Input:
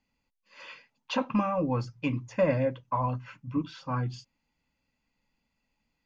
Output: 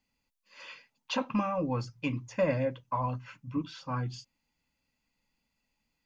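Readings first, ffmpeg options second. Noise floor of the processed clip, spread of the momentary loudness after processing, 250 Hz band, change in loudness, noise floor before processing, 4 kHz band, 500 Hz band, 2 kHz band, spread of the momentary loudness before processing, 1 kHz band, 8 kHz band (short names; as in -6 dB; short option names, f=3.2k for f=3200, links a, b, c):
-82 dBFS, 18 LU, -3.0 dB, -2.5 dB, -81 dBFS, +0.5 dB, -3.0 dB, -1.0 dB, 20 LU, -2.5 dB, n/a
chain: -af "highshelf=f=3.7k:g=7,volume=-3dB"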